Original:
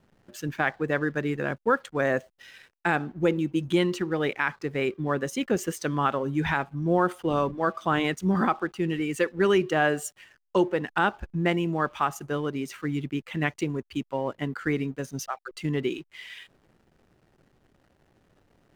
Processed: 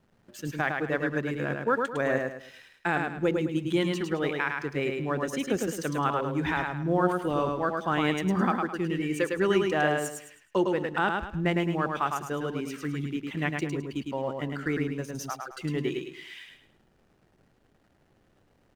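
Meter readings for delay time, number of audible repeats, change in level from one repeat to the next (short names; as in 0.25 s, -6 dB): 0.106 s, 4, -10.0 dB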